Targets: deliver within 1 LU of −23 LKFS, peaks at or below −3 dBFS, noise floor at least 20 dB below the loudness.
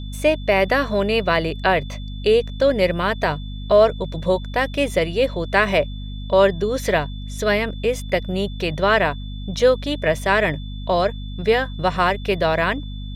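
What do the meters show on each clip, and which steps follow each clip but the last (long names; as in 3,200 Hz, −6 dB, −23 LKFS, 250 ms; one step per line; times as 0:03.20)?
mains hum 50 Hz; hum harmonics up to 250 Hz; level of the hum −28 dBFS; interfering tone 3,500 Hz; level of the tone −42 dBFS; integrated loudness −20.0 LKFS; sample peak −2.5 dBFS; target loudness −23.0 LKFS
→ hum removal 50 Hz, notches 5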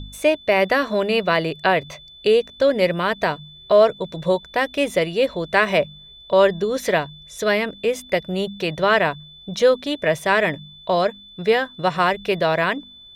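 mains hum none found; interfering tone 3,500 Hz; level of the tone −42 dBFS
→ notch filter 3,500 Hz, Q 30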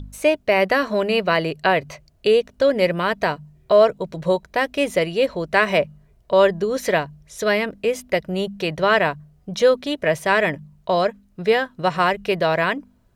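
interfering tone none found; integrated loudness −20.5 LKFS; sample peak −2.5 dBFS; target loudness −23.0 LKFS
→ level −2.5 dB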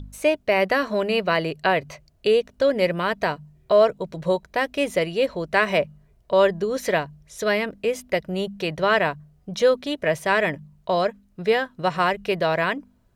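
integrated loudness −23.0 LKFS; sample peak −5.0 dBFS; background noise floor −60 dBFS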